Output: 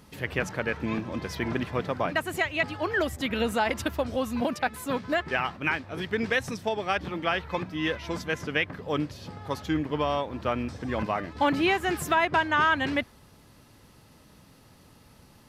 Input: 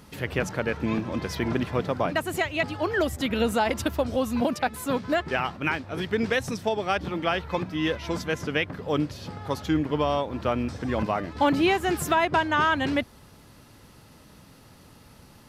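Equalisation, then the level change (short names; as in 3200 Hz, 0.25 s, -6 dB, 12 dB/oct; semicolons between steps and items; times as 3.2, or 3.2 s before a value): notch 1400 Hz, Q 27; dynamic EQ 1800 Hz, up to +5 dB, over -37 dBFS, Q 0.83; -3.5 dB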